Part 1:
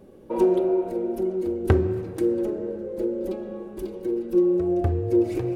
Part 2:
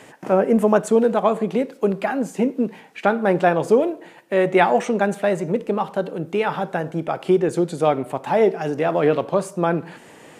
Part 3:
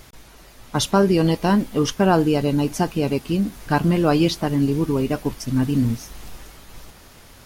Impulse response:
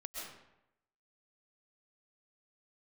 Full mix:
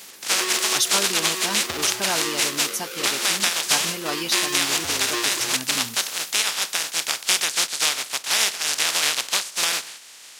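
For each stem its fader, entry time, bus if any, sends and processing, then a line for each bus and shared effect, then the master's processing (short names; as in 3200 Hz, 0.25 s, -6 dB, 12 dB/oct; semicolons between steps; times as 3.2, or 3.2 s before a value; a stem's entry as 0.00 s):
-6.0 dB, 0.00 s, bus A, send -20.5 dB, half-waves squared off
-4.0 dB, 0.00 s, bus A, no send, spectral contrast lowered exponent 0.19
-8.0 dB, 0.00 s, no bus, no send, dry
bus A: 0.0 dB, LPF 5900 Hz 12 dB/oct; compressor, threshold -23 dBFS, peak gain reduction 8.5 dB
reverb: on, RT60 0.85 s, pre-delay 90 ms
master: HPF 77 Hz; tilt +4.5 dB/oct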